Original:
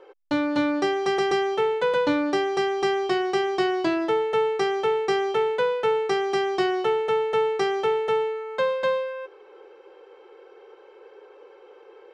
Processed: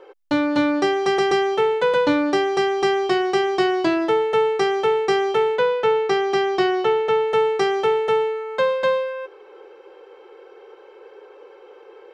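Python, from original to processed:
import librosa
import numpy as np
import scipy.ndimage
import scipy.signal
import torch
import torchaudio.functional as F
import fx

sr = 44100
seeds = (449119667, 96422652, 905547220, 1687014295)

y = fx.lowpass(x, sr, hz=6400.0, slope=12, at=(5.56, 7.28))
y = y * 10.0 ** (4.0 / 20.0)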